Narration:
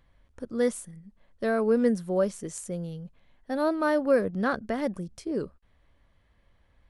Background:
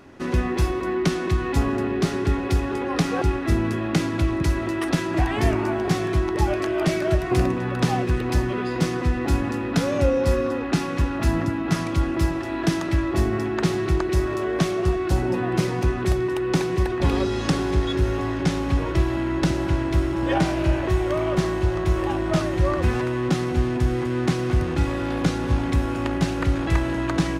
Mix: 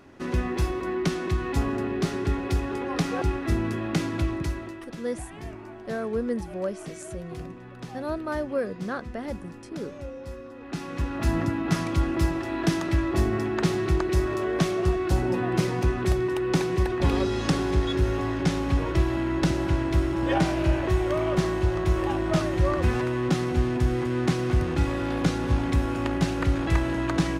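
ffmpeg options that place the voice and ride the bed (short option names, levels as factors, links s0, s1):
-filter_complex "[0:a]adelay=4450,volume=0.562[s0];[1:a]volume=3.98,afade=t=out:st=4.21:d=0.65:silence=0.199526,afade=t=in:st=10.55:d=0.87:silence=0.158489[s1];[s0][s1]amix=inputs=2:normalize=0"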